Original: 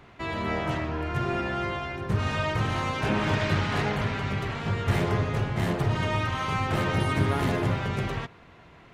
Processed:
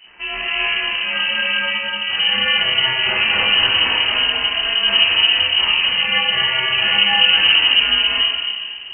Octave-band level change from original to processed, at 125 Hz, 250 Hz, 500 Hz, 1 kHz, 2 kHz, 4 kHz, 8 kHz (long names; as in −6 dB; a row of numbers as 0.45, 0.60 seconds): −15.5 dB, −8.0 dB, −2.0 dB, +3.5 dB, +15.5 dB, +27.0 dB, below −35 dB